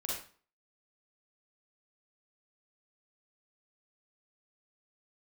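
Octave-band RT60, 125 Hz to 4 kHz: 0.45 s, 0.45 s, 0.40 s, 0.45 s, 0.40 s, 0.35 s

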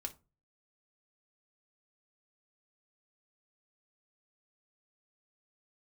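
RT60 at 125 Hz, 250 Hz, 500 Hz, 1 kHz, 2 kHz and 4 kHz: 0.55 s, 0.40 s, 0.30 s, 0.30 s, 0.20 s, 0.20 s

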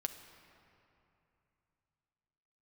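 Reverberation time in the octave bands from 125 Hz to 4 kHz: 3.8 s, 3.2 s, 2.8 s, 3.0 s, 2.6 s, 1.8 s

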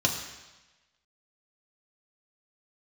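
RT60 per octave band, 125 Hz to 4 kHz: 1.0 s, 1.0 s, 1.1 s, 1.1 s, 1.2 s, 1.2 s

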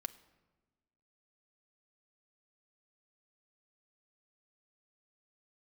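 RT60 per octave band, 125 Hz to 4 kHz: 1.6 s, 1.6 s, 1.3 s, 1.1 s, 0.95 s, 0.75 s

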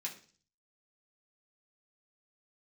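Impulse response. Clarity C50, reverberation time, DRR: 11.0 dB, 0.40 s, -3.5 dB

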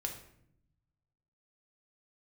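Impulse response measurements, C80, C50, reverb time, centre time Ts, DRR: 11.0 dB, 8.0 dB, 0.70 s, 20 ms, 2.5 dB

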